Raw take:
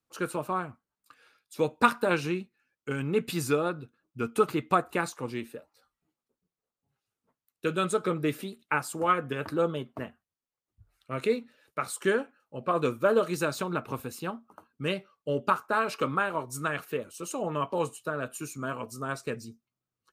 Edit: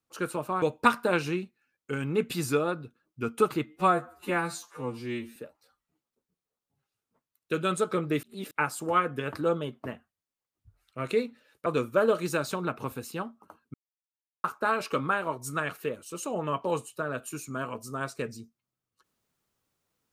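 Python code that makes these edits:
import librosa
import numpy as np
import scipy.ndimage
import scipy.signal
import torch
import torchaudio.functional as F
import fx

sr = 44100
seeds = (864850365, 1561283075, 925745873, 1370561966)

y = fx.edit(x, sr, fx.cut(start_s=0.62, length_s=0.98),
    fx.stretch_span(start_s=4.64, length_s=0.85, factor=2.0),
    fx.reverse_span(start_s=8.36, length_s=0.28),
    fx.cut(start_s=11.79, length_s=0.95),
    fx.silence(start_s=14.82, length_s=0.7), tone=tone)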